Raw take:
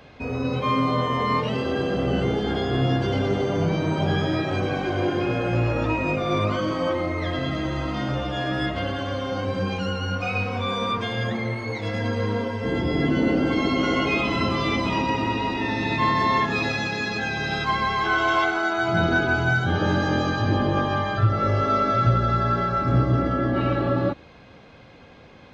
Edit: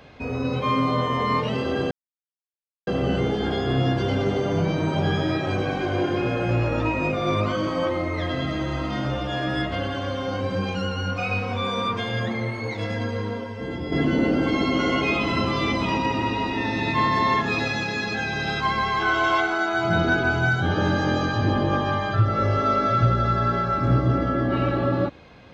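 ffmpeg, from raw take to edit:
-filter_complex "[0:a]asplit=3[a][b][c];[a]atrim=end=1.91,asetpts=PTS-STARTPTS,afade=t=out:st=1.906:d=0.004:c=hsin,apad=pad_dur=0.96[d];[b]atrim=start=1.91:end=12.96,asetpts=PTS-STARTPTS,afade=t=in:d=0.004:c=hsin,afade=t=out:st=9.95:d=1.1:c=qua:silence=0.473151[e];[c]atrim=start=12.96,asetpts=PTS-STARTPTS,afade=t=in:d=0.004:c=hsin:silence=0.473151[f];[d][e][f]concat=n=3:v=0:a=1"

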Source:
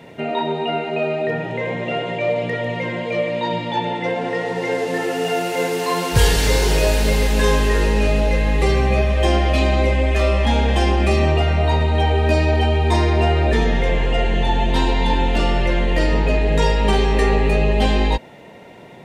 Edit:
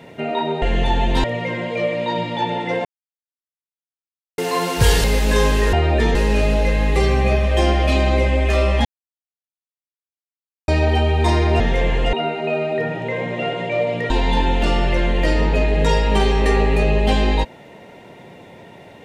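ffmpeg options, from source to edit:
-filter_complex "[0:a]asplit=13[a][b][c][d][e][f][g][h][i][j][k][l][m];[a]atrim=end=0.622[n];[b]atrim=start=14.208:end=14.832[o];[c]atrim=start=2.588:end=4.2,asetpts=PTS-STARTPTS,afade=t=out:st=1.608:d=0.004:c=hsin[p];[d]atrim=start=4.2:end=5.73,asetpts=PTS-STARTPTS,volume=0[q];[e]atrim=start=5.73:end=6.392,asetpts=PTS-STARTPTS,afade=t=in:d=0.004:c=hsin[r];[f]atrim=start=7.118:end=7.812[s];[g]atrim=start=13.258:end=13.682[t];[h]atrim=start=7.808:end=10.51,asetpts=PTS-STARTPTS,afade=t=out:st=2.698:d=0.004:c=hsin[u];[i]atrim=start=10.51:end=12.34,asetpts=PTS-STARTPTS,volume=0[v];[j]atrim=start=12.34:end=13.262,asetpts=PTS-STARTPTS,afade=t=in:d=0.004:c=hsin[w];[k]atrim=start=13.678:end=14.212[x];[l]atrim=start=0.618:end=2.592[y];[m]atrim=start=14.828[z];[n][o]acrossfade=d=0.004:c1=hsin:c2=hsin[aa];[p][q][r]concat=n=3:v=0:a=1[ab];[aa][ab]acrossfade=d=0.004:c1=hsin:c2=hsin[ac];[ac][s]acrossfade=d=0.004:c1=hsin:c2=hsin[ad];[ad][t]acrossfade=d=0.004:c1=hsin:c2=hsin[ae];[u][v][w]concat=n=3:v=0:a=1[af];[ae][af]acrossfade=d=0.004:c1=hsin:c2=hsin[ag];[ag][x]acrossfade=d=0.004:c1=hsin:c2=hsin[ah];[ah][y]acrossfade=d=0.004:c1=hsin:c2=hsin[ai];[ai][z]acrossfade=d=0.004:c1=hsin:c2=hsin"

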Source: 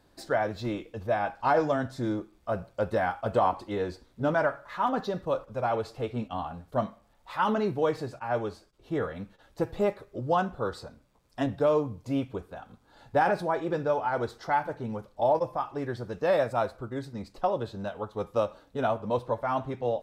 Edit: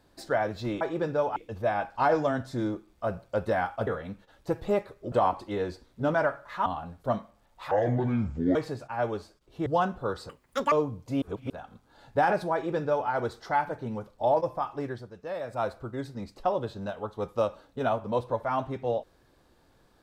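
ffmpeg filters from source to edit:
-filter_complex "[0:a]asplit=15[a][b][c][d][e][f][g][h][i][j][k][l][m][n][o];[a]atrim=end=0.812[p];[b]atrim=start=13.518:end=14.072[q];[c]atrim=start=0.808:end=3.322[r];[d]atrim=start=8.978:end=10.232[s];[e]atrim=start=3.318:end=4.862[t];[f]atrim=start=6.338:end=7.394[u];[g]atrim=start=7.39:end=7.87,asetpts=PTS-STARTPTS,asetrate=25137,aresample=44100[v];[h]atrim=start=7.866:end=8.982[w];[i]atrim=start=10.228:end=10.864[x];[j]atrim=start=10.86:end=11.7,asetpts=PTS-STARTPTS,asetrate=86877,aresample=44100,atrim=end_sample=18804,asetpts=PTS-STARTPTS[y];[k]atrim=start=11.696:end=12.202[z];[l]atrim=start=12.198:end=12.482,asetpts=PTS-STARTPTS,areverse[aa];[m]atrim=start=12.478:end=16.08,asetpts=PTS-STARTPTS,afade=t=out:st=3.322:d=0.28:silence=0.298538[ab];[n]atrim=start=16.08:end=16.41,asetpts=PTS-STARTPTS,volume=-10.5dB[ac];[o]atrim=start=16.41,asetpts=PTS-STARTPTS,afade=t=in:d=0.28:silence=0.298538[ad];[p][q]acrossfade=d=0.004:c1=hsin:c2=hsin[ae];[ae][r]acrossfade=d=0.004:c1=hsin:c2=hsin[af];[af][s]acrossfade=d=0.004:c1=hsin:c2=hsin[ag];[ag][t]acrossfade=d=0.004:c1=hsin:c2=hsin[ah];[ah][u]acrossfade=d=0.004:c1=hsin:c2=hsin[ai];[ai][v]acrossfade=d=0.004:c1=hsin:c2=hsin[aj];[aj][w]acrossfade=d=0.004:c1=hsin:c2=hsin[ak];[ak][x]acrossfade=d=0.004:c1=hsin:c2=hsin[al];[al][y]acrossfade=d=0.004:c1=hsin:c2=hsin[am];[am][z]acrossfade=d=0.004:c1=hsin:c2=hsin[an];[an][aa]acrossfade=d=0.004:c1=hsin:c2=hsin[ao];[ab][ac][ad]concat=n=3:v=0:a=1[ap];[ao][ap]acrossfade=d=0.004:c1=hsin:c2=hsin"

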